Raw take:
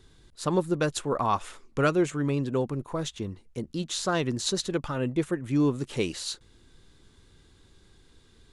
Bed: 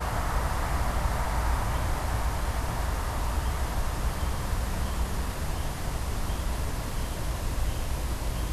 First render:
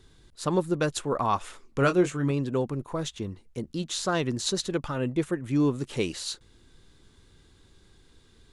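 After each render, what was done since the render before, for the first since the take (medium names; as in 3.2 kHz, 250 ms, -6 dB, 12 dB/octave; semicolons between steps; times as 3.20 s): 1.79–2.31 s: doubling 22 ms -7.5 dB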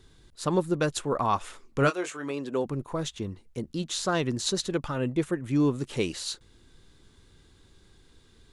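1.89–2.64 s: high-pass 780 Hz -> 220 Hz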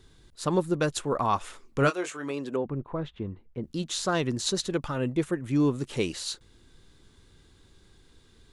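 2.56–3.64 s: distance through air 480 m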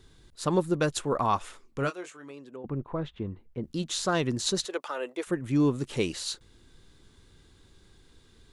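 1.30–2.64 s: fade out quadratic, to -13.5 dB; 4.65–5.27 s: high-pass 420 Hz 24 dB/octave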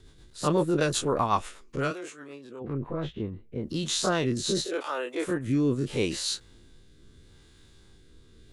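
every event in the spectrogram widened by 60 ms; rotary cabinet horn 8 Hz, later 0.8 Hz, at 2.65 s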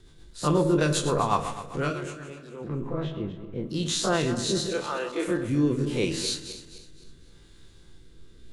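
backward echo that repeats 128 ms, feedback 60%, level -11 dB; simulated room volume 640 m³, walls furnished, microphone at 0.8 m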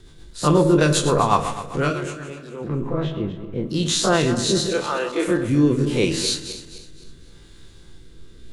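trim +6.5 dB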